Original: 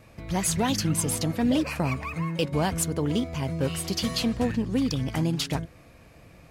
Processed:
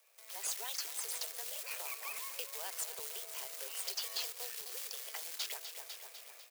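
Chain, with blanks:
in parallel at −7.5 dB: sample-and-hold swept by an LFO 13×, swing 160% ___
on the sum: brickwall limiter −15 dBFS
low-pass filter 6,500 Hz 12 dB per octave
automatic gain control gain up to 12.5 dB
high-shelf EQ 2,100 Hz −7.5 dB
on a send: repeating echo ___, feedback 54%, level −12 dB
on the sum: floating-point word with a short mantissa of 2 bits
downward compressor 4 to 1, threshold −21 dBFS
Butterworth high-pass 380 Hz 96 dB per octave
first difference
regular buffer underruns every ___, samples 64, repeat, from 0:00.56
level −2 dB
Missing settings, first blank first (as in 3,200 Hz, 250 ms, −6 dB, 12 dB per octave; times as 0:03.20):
2.5 Hz, 250 ms, 0.81 s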